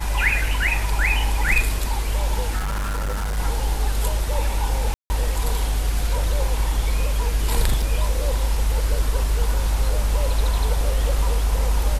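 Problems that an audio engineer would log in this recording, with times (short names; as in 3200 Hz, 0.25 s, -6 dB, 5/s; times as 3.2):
2.58–3.39 clipped -21.5 dBFS
4.94–5.1 gap 0.16 s
7.82 gap 4.5 ms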